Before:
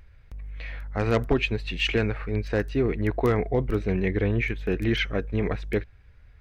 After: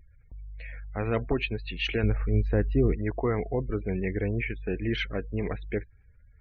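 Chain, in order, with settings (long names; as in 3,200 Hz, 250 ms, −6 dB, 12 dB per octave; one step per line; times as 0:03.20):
gate on every frequency bin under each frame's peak −30 dB strong
0:02.03–0:02.95: spectral tilt −2.5 dB per octave
level −4.5 dB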